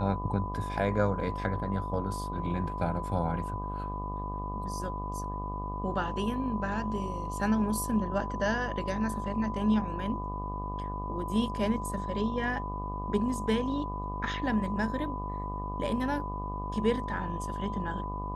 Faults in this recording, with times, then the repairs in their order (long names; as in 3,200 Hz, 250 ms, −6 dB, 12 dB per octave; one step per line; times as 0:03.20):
mains buzz 50 Hz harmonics 24 −37 dBFS
whistle 1,000 Hz −37 dBFS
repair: hum removal 50 Hz, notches 24
notch filter 1,000 Hz, Q 30